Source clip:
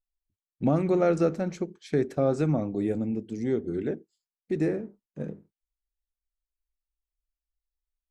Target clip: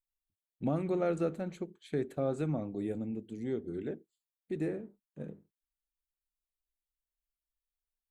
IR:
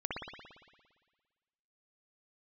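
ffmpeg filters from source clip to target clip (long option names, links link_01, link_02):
-af "aexciter=amount=1.1:drive=2.9:freq=2900,volume=-8dB"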